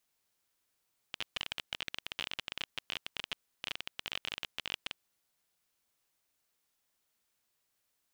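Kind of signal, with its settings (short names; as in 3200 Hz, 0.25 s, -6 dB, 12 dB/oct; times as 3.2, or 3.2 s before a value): random clicks 24/s -19 dBFS 3.93 s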